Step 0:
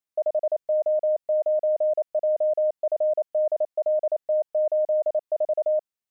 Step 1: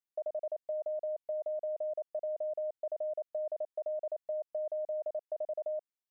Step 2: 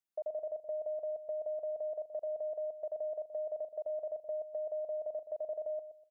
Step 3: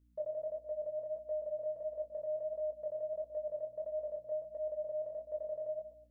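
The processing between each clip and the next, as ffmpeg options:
ffmpeg -i in.wav -af "acompressor=threshold=-24dB:ratio=10,volume=-9dB" out.wav
ffmpeg -i in.wav -filter_complex "[0:a]asplit=2[link_01][link_02];[link_02]adelay=123,lowpass=frequency=860:poles=1,volume=-9.5dB,asplit=2[link_03][link_04];[link_04]adelay=123,lowpass=frequency=860:poles=1,volume=0.34,asplit=2[link_05][link_06];[link_06]adelay=123,lowpass=frequency=860:poles=1,volume=0.34,asplit=2[link_07][link_08];[link_08]adelay=123,lowpass=frequency=860:poles=1,volume=0.34[link_09];[link_01][link_03][link_05][link_07][link_09]amix=inputs=5:normalize=0,volume=-1.5dB" out.wav
ffmpeg -i in.wav -af "aeval=exprs='val(0)+0.000447*(sin(2*PI*60*n/s)+sin(2*PI*2*60*n/s)/2+sin(2*PI*3*60*n/s)/3+sin(2*PI*4*60*n/s)/4+sin(2*PI*5*60*n/s)/5)':channel_layout=same,flanger=delay=19.5:depth=4.8:speed=1.5,asuperstop=centerf=740:order=4:qfactor=3.5,volume=3dB" out.wav

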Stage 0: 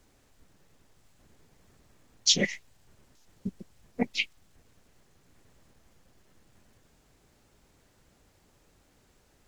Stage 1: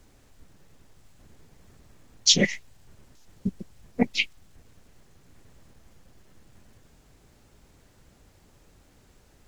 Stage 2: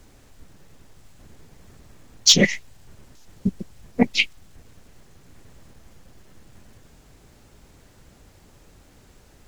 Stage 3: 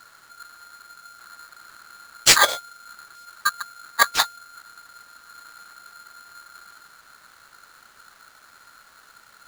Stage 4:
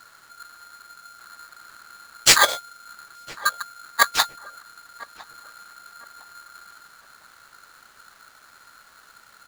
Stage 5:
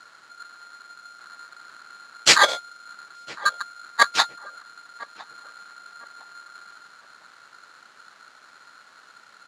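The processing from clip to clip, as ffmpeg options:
ffmpeg -i in.wav -af "lowshelf=frequency=190:gain=5,volume=4dB" out.wav
ffmpeg -i in.wav -af "acontrast=42" out.wav
ffmpeg -i in.wav -af "aeval=exprs='val(0)*sgn(sin(2*PI*1400*n/s))':channel_layout=same" out.wav
ffmpeg -i in.wav -filter_complex "[0:a]asplit=2[link_01][link_02];[link_02]adelay=1007,lowpass=frequency=1300:poles=1,volume=-18dB,asplit=2[link_03][link_04];[link_04]adelay=1007,lowpass=frequency=1300:poles=1,volume=0.41,asplit=2[link_05][link_06];[link_06]adelay=1007,lowpass=frequency=1300:poles=1,volume=0.41[link_07];[link_01][link_03][link_05][link_07]amix=inputs=4:normalize=0" out.wav
ffmpeg -i in.wav -af "highpass=170,lowpass=6100,volume=1dB" out.wav

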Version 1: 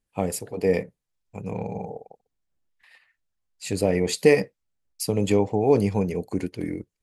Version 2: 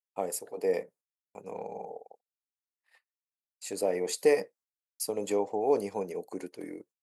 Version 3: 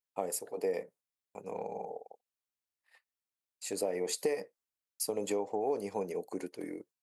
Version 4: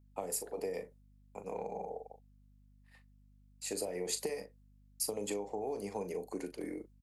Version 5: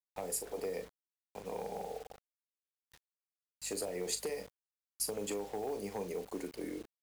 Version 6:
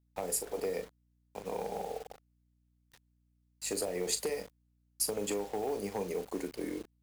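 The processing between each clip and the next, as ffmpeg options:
ffmpeg -i in.wav -af "highpass=480,agate=range=-32dB:threshold=-54dB:ratio=16:detection=peak,equalizer=frequency=2800:width=0.73:gain=-9.5,volume=-2dB" out.wav
ffmpeg -i in.wav -af "acompressor=threshold=-29dB:ratio=5" out.wav
ffmpeg -i in.wav -filter_complex "[0:a]asplit=2[link_01][link_02];[link_02]adelay=39,volume=-10.5dB[link_03];[link_01][link_03]amix=inputs=2:normalize=0,acrossover=split=180|3000[link_04][link_05][link_06];[link_05]acompressor=threshold=-35dB:ratio=6[link_07];[link_04][link_07][link_06]amix=inputs=3:normalize=0,aeval=exprs='val(0)+0.000794*(sin(2*PI*50*n/s)+sin(2*PI*2*50*n/s)/2+sin(2*PI*3*50*n/s)/3+sin(2*PI*4*50*n/s)/4+sin(2*PI*5*50*n/s)/5)':channel_layout=same" out.wav
ffmpeg -i in.wav -filter_complex "[0:a]acrossover=split=5500[link_01][link_02];[link_01]asoftclip=type=hard:threshold=-31dB[link_03];[link_03][link_02]amix=inputs=2:normalize=0,acrusher=bits=8:mix=0:aa=0.000001" out.wav
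ffmpeg -i in.wav -filter_complex "[0:a]aeval=exprs='val(0)+0.000282*(sin(2*PI*60*n/s)+sin(2*PI*2*60*n/s)/2+sin(2*PI*3*60*n/s)/3+sin(2*PI*4*60*n/s)/4+sin(2*PI*5*60*n/s)/5)':channel_layout=same,asplit=2[link_01][link_02];[link_02]aeval=exprs='sgn(val(0))*max(abs(val(0))-0.00316,0)':channel_layout=same,volume=-4dB[link_03];[link_01][link_03]amix=inputs=2:normalize=0" out.wav

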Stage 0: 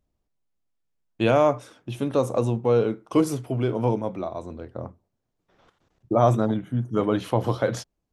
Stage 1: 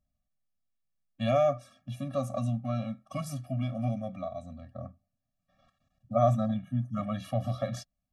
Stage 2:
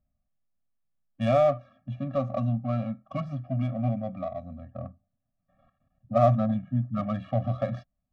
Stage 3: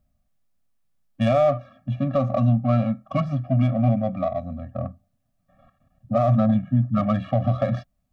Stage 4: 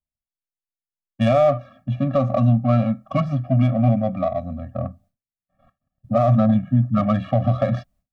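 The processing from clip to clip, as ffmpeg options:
ffmpeg -i in.wav -af "afftfilt=real='re*eq(mod(floor(b*sr/1024/270),2),0)':imag='im*eq(mod(floor(b*sr/1024/270),2),0)':win_size=1024:overlap=0.75,volume=-4.5dB" out.wav
ffmpeg -i in.wav -af "lowpass=3700,adynamicsmooth=sensitivity=6.5:basefreq=1900,volume=3.5dB" out.wav
ffmpeg -i in.wav -af "alimiter=limit=-19.5dB:level=0:latency=1:release=51,volume=8.5dB" out.wav
ffmpeg -i in.wav -af "agate=range=-33dB:threshold=-50dB:ratio=3:detection=peak,volume=2.5dB" out.wav

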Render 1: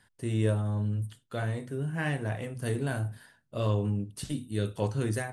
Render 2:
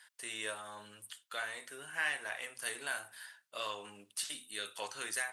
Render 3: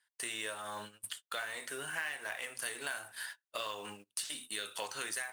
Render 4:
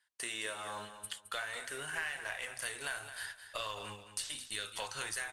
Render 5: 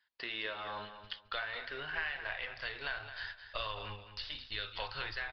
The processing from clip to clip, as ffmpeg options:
ffmpeg -i in.wav -filter_complex "[0:a]highpass=1400,asplit=2[link_01][link_02];[link_02]acompressor=threshold=-51dB:ratio=6,volume=-3dB[link_03];[link_01][link_03]amix=inputs=2:normalize=0,volume=2.5dB" out.wav
ffmpeg -i in.wav -af "acrusher=bits=4:mode=log:mix=0:aa=0.000001,agate=range=-27dB:threshold=-52dB:ratio=16:detection=peak,acompressor=threshold=-47dB:ratio=4,volume=9.5dB" out.wav
ffmpeg -i in.wav -af "asubboost=boost=10.5:cutoff=83,lowpass=11000,aecho=1:1:216|432|648:0.282|0.0733|0.0191" out.wav
ffmpeg -i in.wav -af "aresample=11025,aresample=44100,asubboost=boost=7:cutoff=73,volume=1dB" out.wav

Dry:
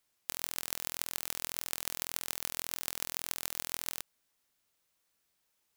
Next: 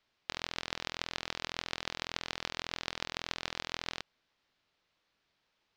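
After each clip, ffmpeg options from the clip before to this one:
ffmpeg -i in.wav -af "lowpass=frequency=4600:width=0.5412,lowpass=frequency=4600:width=1.3066,volume=5dB" out.wav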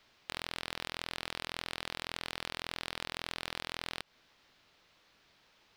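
ffmpeg -i in.wav -af "acompressor=threshold=-39dB:ratio=20,aeval=exprs='clip(val(0),-1,0.0282)':channel_layout=same,volume=12dB" out.wav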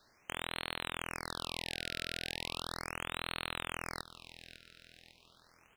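ffmpeg -i in.wav -af "aecho=1:1:551|1102|1653|2204|2755:0.2|0.0958|0.046|0.0221|0.0106,afftfilt=real='re*(1-between(b*sr/1024,940*pow(6100/940,0.5+0.5*sin(2*PI*0.37*pts/sr))/1.41,940*pow(6100/940,0.5+0.5*sin(2*PI*0.37*pts/sr))*1.41))':imag='im*(1-between(b*sr/1024,940*pow(6100/940,0.5+0.5*sin(2*PI*0.37*pts/sr))/1.41,940*pow(6100/940,0.5+0.5*sin(2*PI*0.37*pts/sr))*1.41))':win_size=1024:overlap=0.75,volume=1.5dB" out.wav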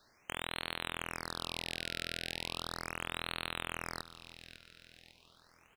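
ffmpeg -i in.wav -filter_complex "[0:a]asplit=2[link_01][link_02];[link_02]adelay=323,lowpass=frequency=2200:poles=1,volume=-21dB,asplit=2[link_03][link_04];[link_04]adelay=323,lowpass=frequency=2200:poles=1,volume=0.46,asplit=2[link_05][link_06];[link_06]adelay=323,lowpass=frequency=2200:poles=1,volume=0.46[link_07];[link_01][link_03][link_05][link_07]amix=inputs=4:normalize=0" out.wav

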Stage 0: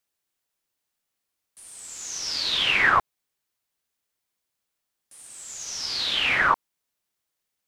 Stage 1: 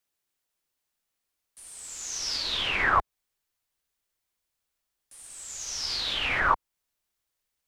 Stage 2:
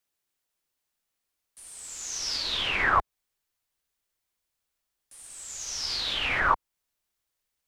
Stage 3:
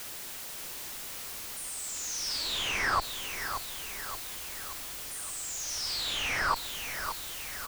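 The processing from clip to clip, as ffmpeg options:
ffmpeg -i in.wav -filter_complex "[0:a]asubboost=boost=3.5:cutoff=81,acrossover=split=640|1300[link_01][link_02][link_03];[link_03]alimiter=limit=-19.5dB:level=0:latency=1:release=289[link_04];[link_01][link_02][link_04]amix=inputs=3:normalize=0,volume=-1dB" out.wav
ffmpeg -i in.wav -af anull out.wav
ffmpeg -i in.wav -af "aeval=exprs='val(0)+0.5*0.0422*sgn(val(0))':channel_layout=same,aecho=1:1:577|1154|1731|2308|2885|3462:0.398|0.203|0.104|0.0528|0.0269|0.0137,volume=-7dB" out.wav

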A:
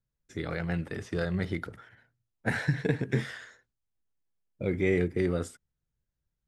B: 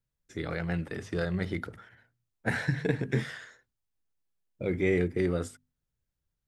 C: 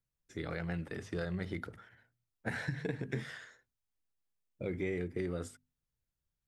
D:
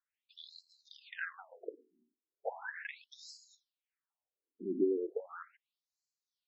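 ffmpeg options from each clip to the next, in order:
ffmpeg -i in.wav -af "bandreject=frequency=50:width_type=h:width=6,bandreject=frequency=100:width_type=h:width=6,bandreject=frequency=150:width_type=h:width=6,bandreject=frequency=200:width_type=h:width=6,bandreject=frequency=250:width_type=h:width=6" out.wav
ffmpeg -i in.wav -af "acompressor=threshold=-28dB:ratio=4,volume=-4.5dB" out.wav
ffmpeg -i in.wav -filter_complex "[0:a]acrossover=split=1100[link_01][link_02];[link_01]aeval=exprs='val(0)*(1-0.5/2+0.5/2*cos(2*PI*2.9*n/s))':channel_layout=same[link_03];[link_02]aeval=exprs='val(0)*(1-0.5/2-0.5/2*cos(2*PI*2.9*n/s))':channel_layout=same[link_04];[link_03][link_04]amix=inputs=2:normalize=0,afftfilt=real='re*between(b*sr/1024,290*pow(5700/290,0.5+0.5*sin(2*PI*0.37*pts/sr))/1.41,290*pow(5700/290,0.5+0.5*sin(2*PI*0.37*pts/sr))*1.41)':imag='im*between(b*sr/1024,290*pow(5700/290,0.5+0.5*sin(2*PI*0.37*pts/sr))/1.41,290*pow(5700/290,0.5+0.5*sin(2*PI*0.37*pts/sr))*1.41)':win_size=1024:overlap=0.75,volume=8.5dB" out.wav

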